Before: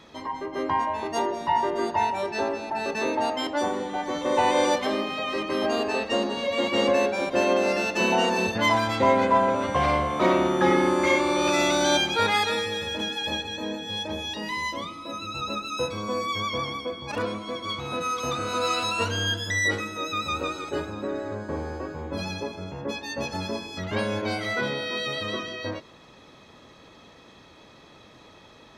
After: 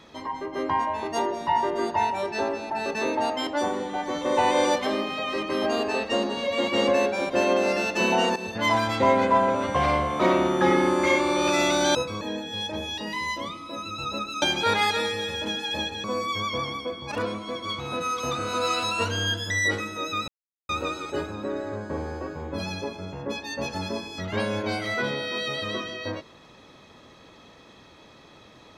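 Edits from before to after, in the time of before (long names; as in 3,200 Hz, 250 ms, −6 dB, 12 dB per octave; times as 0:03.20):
0:08.36–0:08.75: fade in, from −13.5 dB
0:11.95–0:13.57: swap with 0:15.78–0:16.04
0:20.28: splice in silence 0.41 s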